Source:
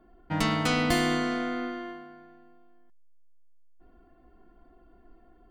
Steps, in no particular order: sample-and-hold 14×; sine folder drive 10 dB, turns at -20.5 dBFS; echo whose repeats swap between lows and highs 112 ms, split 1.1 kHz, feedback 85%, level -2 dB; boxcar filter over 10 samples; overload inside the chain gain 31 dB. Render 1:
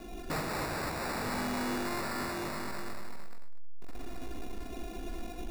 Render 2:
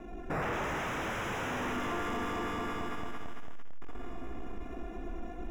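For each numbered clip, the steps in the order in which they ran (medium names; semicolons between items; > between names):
sine folder > echo whose repeats swap between lows and highs > overload inside the chain > boxcar filter > sample-and-hold; sample-and-hold > echo whose repeats swap between lows and highs > sine folder > overload inside the chain > boxcar filter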